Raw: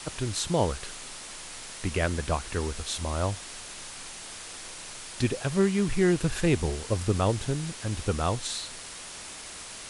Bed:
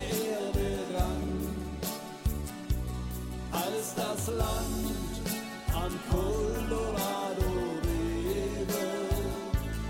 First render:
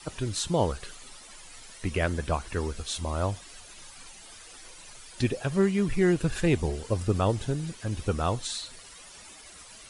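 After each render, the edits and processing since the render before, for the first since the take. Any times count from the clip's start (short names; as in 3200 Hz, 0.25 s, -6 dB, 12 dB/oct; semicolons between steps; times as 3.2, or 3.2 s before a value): denoiser 12 dB, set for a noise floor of -42 dBFS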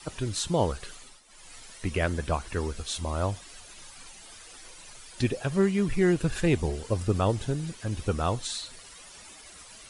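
0.97–1.51 dip -12 dB, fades 0.26 s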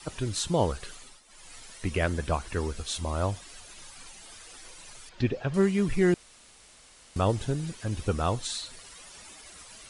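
5.09–5.54 air absorption 180 m; 6.14–7.16 room tone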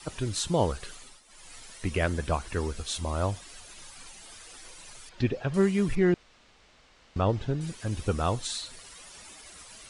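5.95–7.61 air absorption 160 m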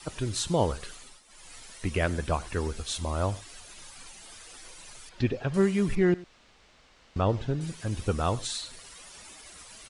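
echo 0.1 s -21 dB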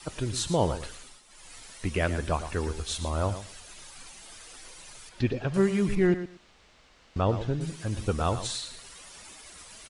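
feedback echo 0.115 s, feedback 17%, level -11.5 dB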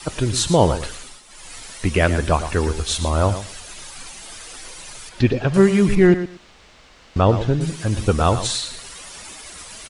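gain +10 dB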